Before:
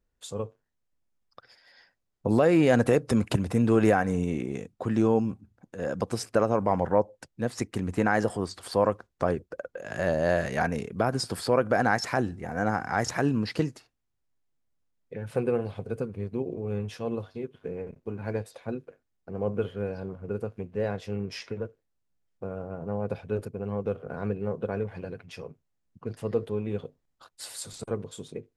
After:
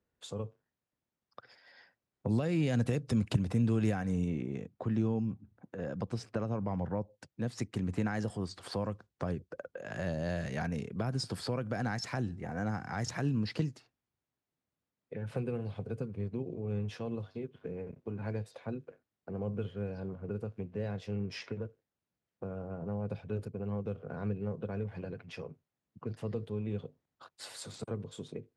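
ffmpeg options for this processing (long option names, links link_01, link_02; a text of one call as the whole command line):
ffmpeg -i in.wav -filter_complex "[0:a]asettb=1/sr,asplit=3[link_01][link_02][link_03];[link_01]atrim=end=4.284[link_04];[link_02]atrim=start=4.28:end=7.11,asetpts=PTS-STARTPTS,afade=type=in:duration=0.004:curve=qsin,afade=type=out:start_time=2.826:duration=0.004:curve=qsin,aemphasis=mode=reproduction:type=50kf[link_05];[link_03]atrim=start=7.106[link_06];[link_04][link_05]acrossfade=duration=0.004:curve1=hsin:curve2=qsin[link_07];[link_07][link_06]acrossfade=duration=0.004:curve1=qsin:curve2=hsin,highpass=91,aemphasis=mode=reproduction:type=50fm,acrossover=split=190|3000[link_08][link_09][link_10];[link_09]acompressor=threshold=-41dB:ratio=3[link_11];[link_08][link_11][link_10]amix=inputs=3:normalize=0" out.wav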